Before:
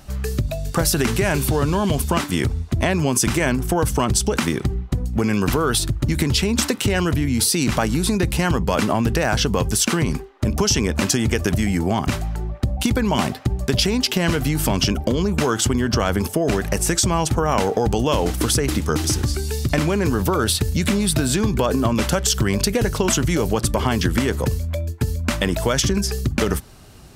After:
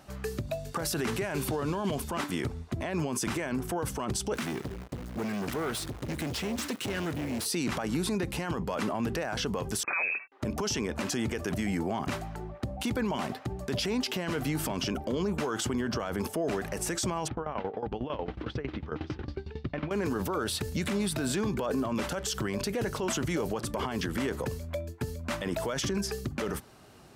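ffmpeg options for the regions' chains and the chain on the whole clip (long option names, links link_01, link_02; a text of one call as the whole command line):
ffmpeg -i in.wav -filter_complex "[0:a]asettb=1/sr,asplit=3[link_01][link_02][link_03];[link_01]atrim=end=4.344[link_04];[link_02]atrim=start=4.34:end=7.46,asetpts=PTS-STARTPTS,afade=type=in:duration=0.004:curve=qsin,afade=type=out:start_time=3.116:duration=0.004:curve=qsin,equalizer=frequency=780:width_type=o:width=1:gain=-11,acrusher=bits=7:dc=4:mix=0:aa=0.000001,asoftclip=type=hard:threshold=-22dB[link_05];[link_03]atrim=start=7.456[link_06];[link_04][link_05]acrossfade=duration=0.004:curve1=hsin:curve2=qsin[link_07];[link_07][link_06]acrossfade=duration=0.004:curve1=qsin:curve2=hsin,asettb=1/sr,asplit=3[link_08][link_09][link_10];[link_08]atrim=end=9.834[link_11];[link_09]atrim=start=9.83:end=10.32,asetpts=PTS-STARTPTS,afade=type=in:duration=0.004:curve=qsin,afade=type=out:start_time=0.486:duration=0.004:curve=qsin,highpass=frequency=63:width=0.5412,highpass=frequency=63:width=1.3066,aeval=exprs='sgn(val(0))*max(abs(val(0))-0.00944,0)':channel_layout=same,lowpass=frequency=2300:width_type=q:width=0.5098,lowpass=frequency=2300:width_type=q:width=0.6013,lowpass=frequency=2300:width_type=q:width=0.9,lowpass=frequency=2300:width_type=q:width=2.563,afreqshift=-2700[link_12];[link_10]atrim=start=10.316[link_13];[link_11][link_12]acrossfade=duration=0.004:curve1=hsin:curve2=qsin[link_14];[link_14][link_13]acrossfade=duration=0.004:curve1=qsin:curve2=hsin,asettb=1/sr,asplit=3[link_15][link_16][link_17];[link_15]atrim=end=17.284[link_18];[link_16]atrim=start=17.28:end=19.91,asetpts=PTS-STARTPTS,afade=type=in:duration=0.004:curve=qsin,afade=type=out:start_time=2.626:duration=0.004:curve=qsin,lowpass=frequency=3500:width=0.5412,lowpass=frequency=3500:width=1.3066,lowshelf=frequency=72:gain=11.5,aeval=exprs='val(0)*pow(10,-20*if(lt(mod(11*n/s,1),2*abs(11)/1000),1-mod(11*n/s,1)/(2*abs(11)/1000),(mod(11*n/s,1)-2*abs(11)/1000)/(1-2*abs(11)/1000))/20)':channel_layout=same[link_19];[link_17]atrim=start=19.906[link_20];[link_18][link_19]acrossfade=duration=0.004:curve1=hsin:curve2=qsin[link_21];[link_21][link_20]acrossfade=duration=0.004:curve1=qsin:curve2=hsin,highpass=frequency=310:poles=1,highshelf=frequency=2600:gain=-8.5,alimiter=limit=-19dB:level=0:latency=1:release=23,volume=-3dB" out.wav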